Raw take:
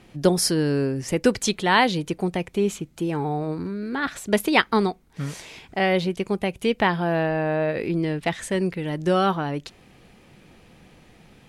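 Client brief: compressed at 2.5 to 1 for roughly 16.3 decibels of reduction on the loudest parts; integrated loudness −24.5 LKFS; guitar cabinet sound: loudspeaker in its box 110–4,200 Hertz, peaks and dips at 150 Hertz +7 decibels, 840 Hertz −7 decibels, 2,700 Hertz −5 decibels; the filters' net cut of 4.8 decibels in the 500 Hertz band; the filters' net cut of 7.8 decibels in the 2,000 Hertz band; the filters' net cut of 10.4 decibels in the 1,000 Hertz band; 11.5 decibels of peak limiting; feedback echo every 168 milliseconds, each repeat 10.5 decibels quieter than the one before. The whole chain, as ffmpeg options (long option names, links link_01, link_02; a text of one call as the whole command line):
ffmpeg -i in.wav -af "equalizer=frequency=500:width_type=o:gain=-4,equalizer=frequency=1000:width_type=o:gain=-6.5,equalizer=frequency=2000:width_type=o:gain=-6,acompressor=threshold=-42dB:ratio=2.5,alimiter=level_in=11dB:limit=-24dB:level=0:latency=1,volume=-11dB,highpass=110,equalizer=frequency=150:width_type=q:width=4:gain=7,equalizer=frequency=840:width_type=q:width=4:gain=-7,equalizer=frequency=2700:width_type=q:width=4:gain=-5,lowpass=frequency=4200:width=0.5412,lowpass=frequency=4200:width=1.3066,aecho=1:1:168|336|504:0.299|0.0896|0.0269,volume=18.5dB" out.wav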